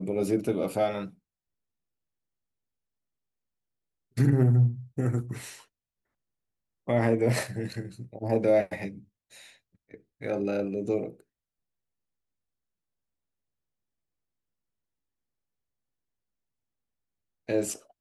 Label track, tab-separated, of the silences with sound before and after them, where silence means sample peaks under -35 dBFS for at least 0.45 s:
1.070000	4.170000	silence
5.530000	6.880000	silence
8.910000	9.940000	silence
11.080000	17.490000	silence